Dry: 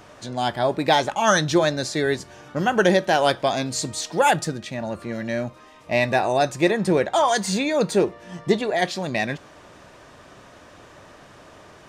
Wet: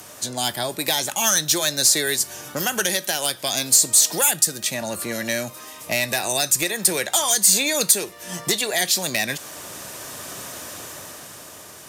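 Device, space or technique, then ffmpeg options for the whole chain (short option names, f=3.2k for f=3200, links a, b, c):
FM broadcast chain: -filter_complex "[0:a]highpass=72,dynaudnorm=f=120:g=21:m=10.5dB,acrossover=split=83|380|1600[a][b][c][d];[a]acompressor=threshold=-59dB:ratio=4[e];[b]acompressor=threshold=-34dB:ratio=4[f];[c]acompressor=threshold=-29dB:ratio=4[g];[d]acompressor=threshold=-24dB:ratio=4[h];[e][f][g][h]amix=inputs=4:normalize=0,aemphasis=mode=production:type=50fm,alimiter=limit=-11dB:level=0:latency=1:release=456,asoftclip=type=hard:threshold=-17dB,lowpass=f=15k:w=0.5412,lowpass=f=15k:w=1.3066,aemphasis=mode=production:type=50fm,volume=1dB"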